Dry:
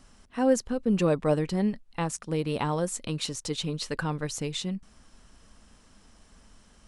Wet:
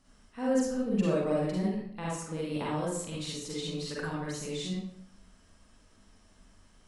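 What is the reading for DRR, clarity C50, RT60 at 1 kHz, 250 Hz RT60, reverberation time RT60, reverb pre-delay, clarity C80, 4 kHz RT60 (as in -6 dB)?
-6.5 dB, -2.5 dB, 0.65 s, 0.80 s, 0.65 s, 39 ms, 3.0 dB, 0.50 s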